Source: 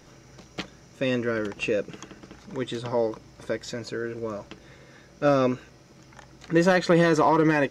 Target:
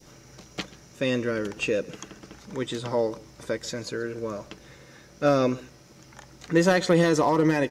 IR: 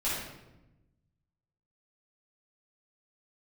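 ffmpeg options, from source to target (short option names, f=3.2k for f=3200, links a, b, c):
-af "highshelf=f=6.9k:g=9.5,aecho=1:1:134:0.0891,adynamicequalizer=threshold=0.0158:dfrequency=1400:dqfactor=0.75:tfrequency=1400:tqfactor=0.75:attack=5:release=100:ratio=0.375:range=3:mode=cutabove:tftype=bell"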